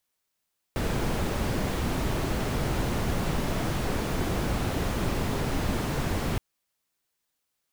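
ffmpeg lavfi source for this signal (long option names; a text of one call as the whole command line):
ffmpeg -f lavfi -i "anoisesrc=color=brown:amplitude=0.209:duration=5.62:sample_rate=44100:seed=1" out.wav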